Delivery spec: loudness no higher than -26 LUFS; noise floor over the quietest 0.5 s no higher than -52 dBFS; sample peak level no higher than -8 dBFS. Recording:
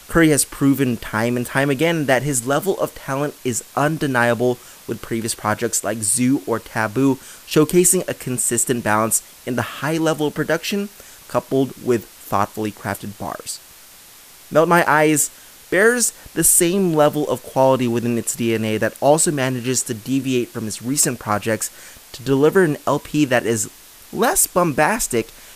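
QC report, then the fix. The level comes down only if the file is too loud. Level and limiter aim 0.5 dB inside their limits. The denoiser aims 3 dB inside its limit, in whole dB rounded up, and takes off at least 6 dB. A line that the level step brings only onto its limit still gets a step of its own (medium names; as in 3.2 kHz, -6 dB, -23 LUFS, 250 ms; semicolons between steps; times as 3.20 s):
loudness -18.5 LUFS: fail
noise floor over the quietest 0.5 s -44 dBFS: fail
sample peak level -2.0 dBFS: fail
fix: noise reduction 6 dB, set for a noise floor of -44 dBFS; trim -8 dB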